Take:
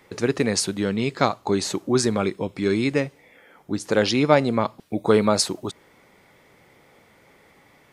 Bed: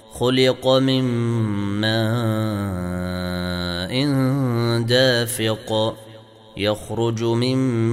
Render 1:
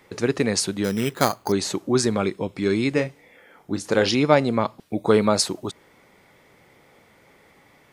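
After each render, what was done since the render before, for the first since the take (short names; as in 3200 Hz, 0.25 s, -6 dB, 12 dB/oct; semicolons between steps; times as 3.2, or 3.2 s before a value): 0.84–1.52 careless resampling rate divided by 8×, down none, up hold; 2.94–4.15 doubler 31 ms -9 dB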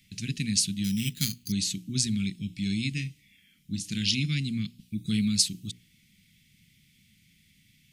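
Chebyshev band-stop 200–2700 Hz, order 3; notches 60/120/180/240/300/360/420 Hz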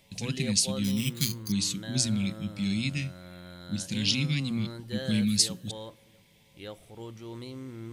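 add bed -21.5 dB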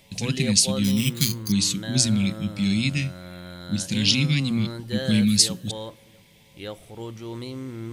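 gain +6.5 dB; limiter -3 dBFS, peak gain reduction 1.5 dB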